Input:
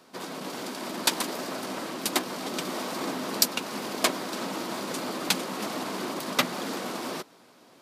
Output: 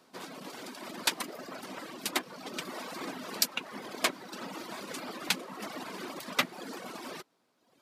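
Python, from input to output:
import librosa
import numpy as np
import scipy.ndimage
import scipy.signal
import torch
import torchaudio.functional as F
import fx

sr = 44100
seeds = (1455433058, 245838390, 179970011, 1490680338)

y = fx.dereverb_blind(x, sr, rt60_s=1.3)
y = fx.dynamic_eq(y, sr, hz=2100.0, q=0.95, threshold_db=-45.0, ratio=4.0, max_db=5)
y = y * librosa.db_to_amplitude(-6.0)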